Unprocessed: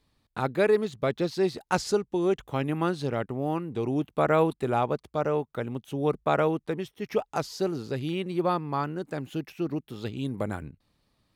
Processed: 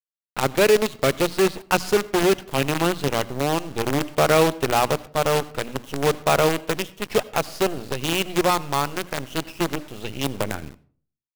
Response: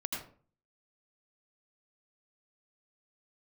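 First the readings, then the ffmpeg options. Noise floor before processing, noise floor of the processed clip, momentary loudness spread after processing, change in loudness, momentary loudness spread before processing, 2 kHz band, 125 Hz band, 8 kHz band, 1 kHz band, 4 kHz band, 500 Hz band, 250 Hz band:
-76 dBFS, -85 dBFS, 10 LU, +6.0 dB, 10 LU, +10.0 dB, +3.5 dB, +15.5 dB, +6.5 dB, +14.0 dB, +5.5 dB, +3.5 dB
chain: -filter_complex "[0:a]equalizer=f=2800:w=2.9:g=9,bandreject=f=60:t=h:w=6,bandreject=f=120:t=h:w=6,bandreject=f=180:t=h:w=6,bandreject=f=240:t=h:w=6,bandreject=f=300:t=h:w=6,acontrast=59,acrusher=bits=4:dc=4:mix=0:aa=0.000001,asplit=2[s0][s1];[1:a]atrim=start_sample=2205[s2];[s1][s2]afir=irnorm=-1:irlink=0,volume=0.106[s3];[s0][s3]amix=inputs=2:normalize=0,volume=0.841"

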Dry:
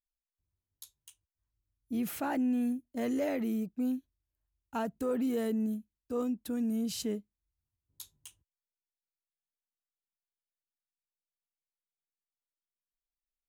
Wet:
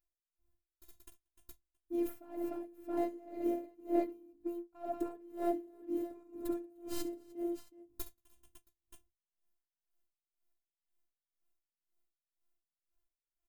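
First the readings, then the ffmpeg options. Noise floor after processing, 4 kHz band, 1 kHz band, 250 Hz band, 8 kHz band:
under -85 dBFS, -10.5 dB, -2.0 dB, -6.5 dB, -8.5 dB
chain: -filter_complex "[0:a]acrossover=split=960[s0][s1];[s1]aeval=exprs='max(val(0),0)':c=same[s2];[s0][s2]amix=inputs=2:normalize=0,aecho=1:1:63|69|181|300|672:0.211|0.282|0.106|0.335|0.316,areverse,acompressor=threshold=0.0141:ratio=12,areverse,equalizer=f=4500:w=0.44:g=-9.5,bandreject=f=50:t=h:w=6,bandreject=f=100:t=h:w=6,bandreject=f=150:t=h:w=6,bandreject=f=200:t=h:w=6,bandreject=f=250:t=h:w=6,afftfilt=real='hypot(re,im)*cos(PI*b)':imag='0':win_size=512:overlap=0.75,volume=56.2,asoftclip=hard,volume=0.0178,adynamicequalizer=threshold=0.00158:dfrequency=590:dqfactor=1:tfrequency=590:tqfactor=1:attack=5:release=100:ratio=0.375:range=1.5:mode=boostabove:tftype=bell,aeval=exprs='val(0)*pow(10,-25*(0.5-0.5*cos(2*PI*2*n/s))/20)':c=same,volume=5.62"

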